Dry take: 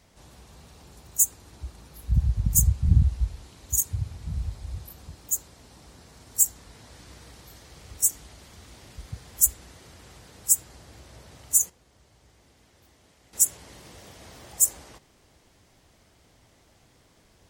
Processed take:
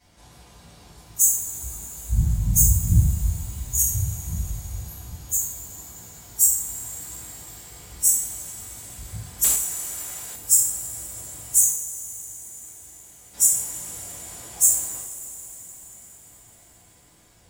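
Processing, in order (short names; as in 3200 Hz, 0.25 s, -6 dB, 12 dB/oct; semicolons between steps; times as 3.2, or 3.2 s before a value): spectral trails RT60 0.53 s; two-slope reverb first 0.25 s, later 4.9 s, from -22 dB, DRR -9 dB; 9.44–10.36 overdrive pedal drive 11 dB, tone 6400 Hz, clips at -2 dBFS; gain -8.5 dB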